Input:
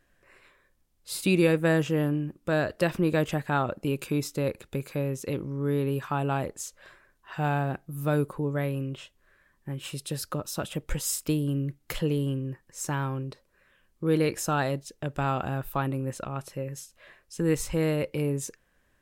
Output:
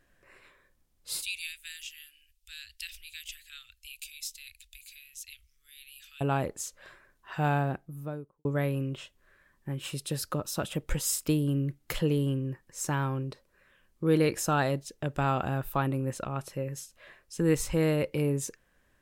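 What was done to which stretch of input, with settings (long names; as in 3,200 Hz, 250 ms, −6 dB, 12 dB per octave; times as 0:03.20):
0:01.22–0:06.21: inverse Chebyshev band-stop filter 140–940 Hz, stop band 60 dB
0:07.50–0:08.45: fade out and dull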